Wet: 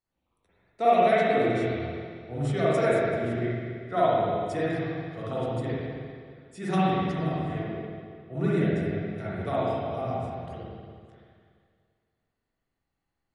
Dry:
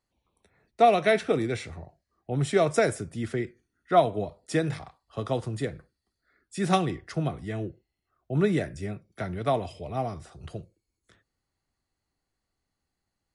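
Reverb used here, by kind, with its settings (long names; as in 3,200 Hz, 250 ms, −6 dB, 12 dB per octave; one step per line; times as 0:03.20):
spring reverb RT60 2.1 s, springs 42/48/59 ms, chirp 75 ms, DRR −10 dB
level −10 dB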